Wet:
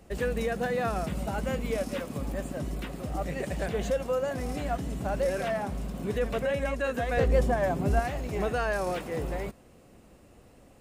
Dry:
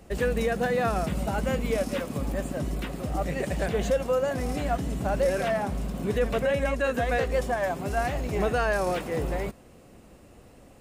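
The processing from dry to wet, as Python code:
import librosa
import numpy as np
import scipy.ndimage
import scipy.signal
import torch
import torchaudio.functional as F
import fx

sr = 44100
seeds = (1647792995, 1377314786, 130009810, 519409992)

y = fx.low_shelf(x, sr, hz=470.0, db=10.5, at=(7.17, 8.0))
y = F.gain(torch.from_numpy(y), -3.5).numpy()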